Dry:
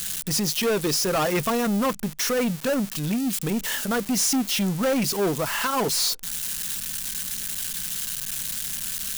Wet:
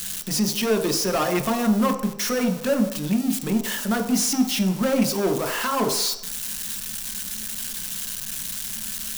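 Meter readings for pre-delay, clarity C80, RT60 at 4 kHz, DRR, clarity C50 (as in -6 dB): 3 ms, 12.0 dB, 0.70 s, 5.0 dB, 9.5 dB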